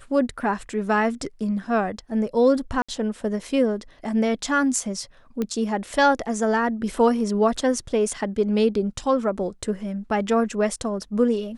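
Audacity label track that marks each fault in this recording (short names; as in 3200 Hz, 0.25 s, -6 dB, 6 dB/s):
2.820000	2.880000	gap 65 ms
5.420000	5.420000	pop -14 dBFS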